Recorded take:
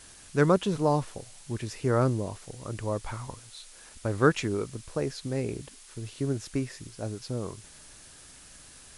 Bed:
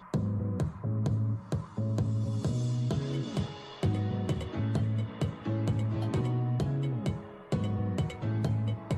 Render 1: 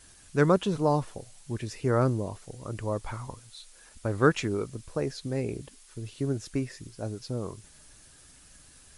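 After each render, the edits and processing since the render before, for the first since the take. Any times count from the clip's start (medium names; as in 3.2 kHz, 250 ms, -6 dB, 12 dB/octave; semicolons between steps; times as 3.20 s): noise reduction 6 dB, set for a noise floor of -51 dBFS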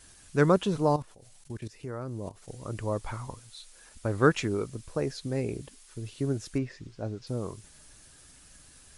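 0.96–2.48 s: level held to a coarse grid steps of 18 dB; 6.58–7.27 s: distance through air 120 m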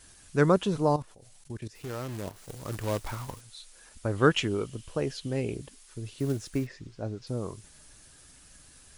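1.75–3.41 s: companded quantiser 4-bit; 4.16–5.55 s: peaking EQ 3 kHz +12.5 dB 0.28 oct; 6.18–6.68 s: block-companded coder 5-bit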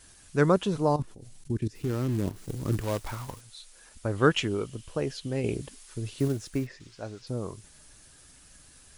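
0.99–2.81 s: resonant low shelf 440 Hz +8.5 dB, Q 1.5; 5.44–6.28 s: gain +4 dB; 6.80–7.22 s: tilt shelf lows -7 dB, about 710 Hz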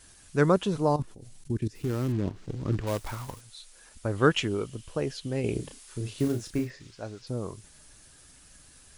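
2.12–2.87 s: distance through air 110 m; 5.52–6.91 s: doubling 33 ms -6 dB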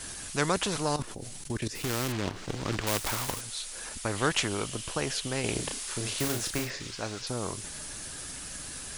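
spectrum-flattening compressor 2:1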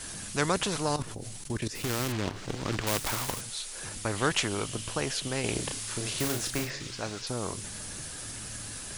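add bed -19 dB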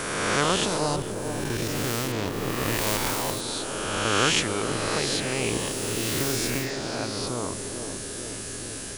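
reverse spectral sustain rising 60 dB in 2.05 s; on a send: band-passed feedback delay 439 ms, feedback 77%, band-pass 360 Hz, level -5.5 dB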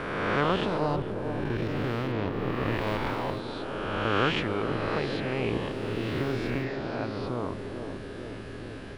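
distance through air 400 m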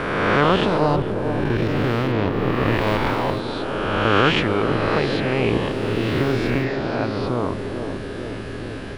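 trim +9 dB; peak limiter -3 dBFS, peak gain reduction 2 dB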